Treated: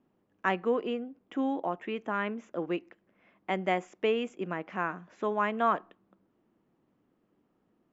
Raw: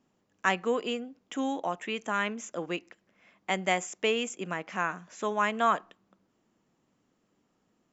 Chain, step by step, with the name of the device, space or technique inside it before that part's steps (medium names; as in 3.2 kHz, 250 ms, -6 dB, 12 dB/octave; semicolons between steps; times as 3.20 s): 0.69–2.60 s: treble shelf 5.4 kHz -6 dB; phone in a pocket (low-pass 3.9 kHz 12 dB/octave; peaking EQ 340 Hz +4 dB 0.55 oct; treble shelf 2.3 kHz -9.5 dB)